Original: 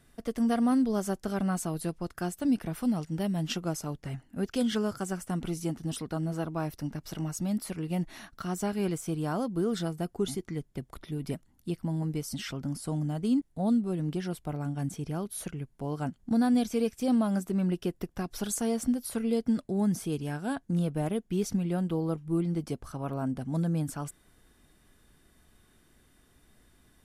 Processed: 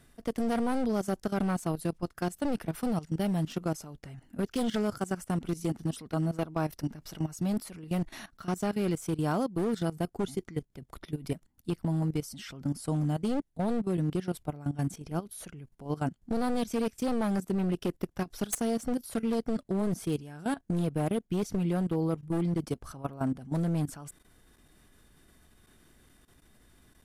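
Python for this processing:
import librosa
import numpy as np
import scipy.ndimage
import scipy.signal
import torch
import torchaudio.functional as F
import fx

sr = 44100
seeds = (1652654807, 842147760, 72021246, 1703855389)

y = np.minimum(x, 2.0 * 10.0 ** (-27.5 / 20.0) - x)
y = fx.level_steps(y, sr, step_db=16)
y = y * 10.0 ** (4.0 / 20.0)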